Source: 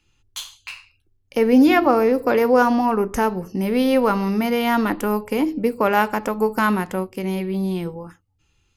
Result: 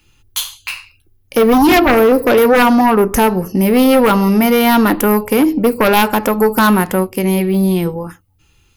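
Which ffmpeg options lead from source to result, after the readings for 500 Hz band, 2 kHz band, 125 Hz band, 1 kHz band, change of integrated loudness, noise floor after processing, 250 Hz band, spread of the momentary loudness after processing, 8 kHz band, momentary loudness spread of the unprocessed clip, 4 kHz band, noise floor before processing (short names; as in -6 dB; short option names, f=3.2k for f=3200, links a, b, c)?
+7.0 dB, +7.5 dB, +9.5 dB, +7.0 dB, +7.0 dB, -55 dBFS, +7.5 dB, 12 LU, +14.0 dB, 17 LU, +10.5 dB, -65 dBFS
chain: -af "aeval=exprs='0.75*sin(PI/2*3.16*val(0)/0.75)':c=same,aexciter=amount=3.1:drive=5.1:freq=9.8k,volume=-3.5dB"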